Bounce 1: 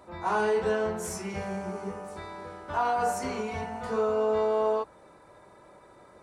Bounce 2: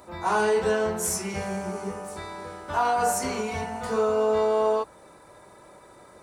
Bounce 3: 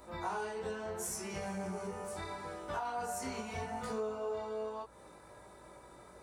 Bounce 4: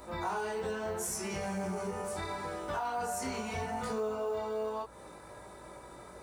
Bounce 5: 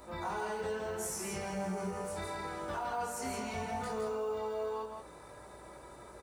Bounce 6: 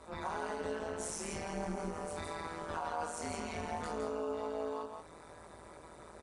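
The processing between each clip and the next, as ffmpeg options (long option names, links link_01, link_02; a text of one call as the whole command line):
ffmpeg -i in.wav -af "highshelf=frequency=5600:gain=11,volume=3dB" out.wav
ffmpeg -i in.wav -af "acompressor=threshold=-31dB:ratio=6,flanger=delay=18.5:depth=4.1:speed=0.76,aeval=exprs='val(0)+0.000631*(sin(2*PI*60*n/s)+sin(2*PI*2*60*n/s)/2+sin(2*PI*3*60*n/s)/3+sin(2*PI*4*60*n/s)/4+sin(2*PI*5*60*n/s)/5)':channel_layout=same,volume=-2dB" out.wav
ffmpeg -i in.wav -filter_complex "[0:a]asplit=2[link_01][link_02];[link_02]alimiter=level_in=11dB:limit=-24dB:level=0:latency=1,volume=-11dB,volume=2dB[link_03];[link_01][link_03]amix=inputs=2:normalize=0,acrusher=bits=9:mode=log:mix=0:aa=0.000001,volume=-1.5dB" out.wav
ffmpeg -i in.wav -af "aecho=1:1:164:0.562,volume=-3dB" out.wav
ffmpeg -i in.wav -af "tremolo=f=160:d=0.889,volume=2dB" -ar 22050 -c:a adpcm_ima_wav out.wav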